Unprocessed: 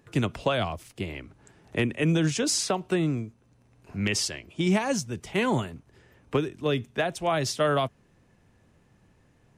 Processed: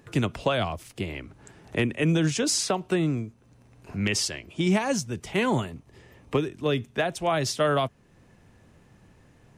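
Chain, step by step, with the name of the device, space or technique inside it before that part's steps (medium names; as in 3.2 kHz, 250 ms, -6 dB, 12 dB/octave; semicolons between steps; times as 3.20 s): parallel compression (in parallel at -1 dB: compression, threshold -44 dBFS, peak gain reduction 22.5 dB); 5.65–6.41 s: on the sum: band-stop 1.5 kHz, Q 5.7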